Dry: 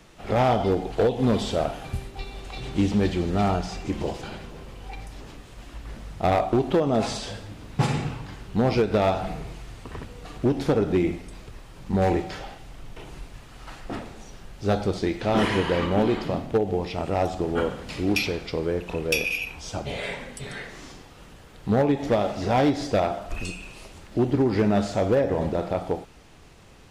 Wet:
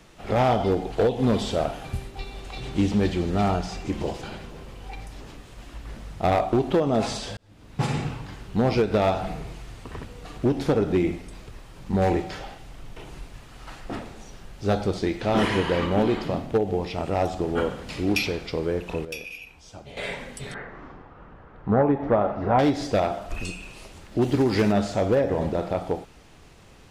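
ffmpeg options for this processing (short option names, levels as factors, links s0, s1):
-filter_complex "[0:a]asettb=1/sr,asplit=3[s0][s1][s2];[s0]atrim=end=20.544[s3];[s1]atrim=start=20.54:end=22.59,asetpts=PTS-STARTPTS,afade=t=in:d=0.004:c=qsin,afade=t=out:st=2.046:d=0.004:c=qsin,lowpass=f=1300:t=q:w=1.6[s4];[s2]atrim=start=22.586[s5];[s3][s4]acrossfade=d=0.004:c1=hsin:c2=qsin[s6];[s6][s5]acrossfade=d=0.004:c1=qsin:c2=hsin,asplit=3[s7][s8][s9];[s7]afade=t=out:st=24.21:d=0.02[s10];[s8]highshelf=f=2400:g=11,afade=t=in:st=24.21:d=0.02,afade=t=out:st=24.71:d=0.02[s11];[s9]afade=t=in:st=24.71:d=0.02[s12];[s10][s11][s12]amix=inputs=3:normalize=0,asplit=4[s13][s14][s15][s16];[s13]atrim=end=7.37,asetpts=PTS-STARTPTS,afade=t=out:st=7.366:d=0.004:c=hsin[s17];[s14]atrim=start=7.37:end=19.052,asetpts=PTS-STARTPTS,afade=t=in:d=0.62[s18];[s15]atrim=start=19.048:end=19.972,asetpts=PTS-STARTPTS,volume=0.266[s19];[s16]atrim=start=19.968[s20];[s17][s18]concat=n=2:v=0:a=1[s21];[s21][s19]acrossfade=d=0.004:c1=hsin:c2=hsin[s22];[s22][s20]acrossfade=d=0.004:c1=hsin:c2=hsin"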